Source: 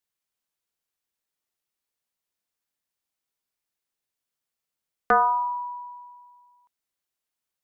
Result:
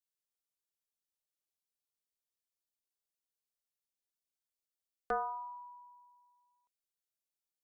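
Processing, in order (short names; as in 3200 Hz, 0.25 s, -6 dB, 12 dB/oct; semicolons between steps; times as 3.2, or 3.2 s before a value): ten-band EQ 125 Hz -10 dB, 250 Hz -6 dB, 1000 Hz -8 dB, 2000 Hz -10 dB; gain -7.5 dB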